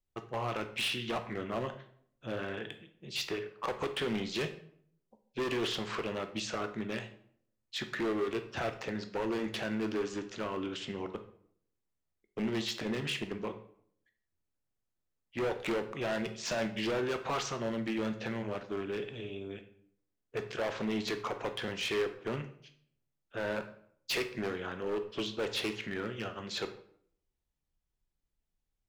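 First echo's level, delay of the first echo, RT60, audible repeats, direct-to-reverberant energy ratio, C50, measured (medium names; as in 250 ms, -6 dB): no echo, no echo, 0.65 s, no echo, 7.5 dB, 11.0 dB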